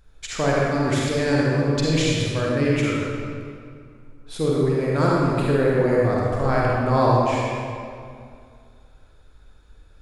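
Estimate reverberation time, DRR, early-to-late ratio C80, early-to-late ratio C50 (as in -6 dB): 2.3 s, -5.0 dB, -1.5 dB, -3.5 dB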